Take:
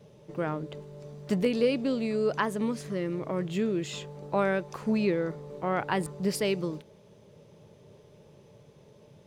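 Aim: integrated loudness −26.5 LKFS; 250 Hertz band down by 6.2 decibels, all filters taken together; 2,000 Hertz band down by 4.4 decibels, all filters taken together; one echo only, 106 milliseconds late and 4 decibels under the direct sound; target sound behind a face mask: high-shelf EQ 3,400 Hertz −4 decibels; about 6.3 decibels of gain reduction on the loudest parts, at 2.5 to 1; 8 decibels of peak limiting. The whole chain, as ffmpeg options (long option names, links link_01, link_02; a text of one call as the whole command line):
ffmpeg -i in.wav -af "equalizer=frequency=250:width_type=o:gain=-8.5,equalizer=frequency=2000:width_type=o:gain=-4.5,acompressor=threshold=-32dB:ratio=2.5,alimiter=level_in=4dB:limit=-24dB:level=0:latency=1,volume=-4dB,highshelf=frequency=3400:gain=-4,aecho=1:1:106:0.631,volume=11dB" out.wav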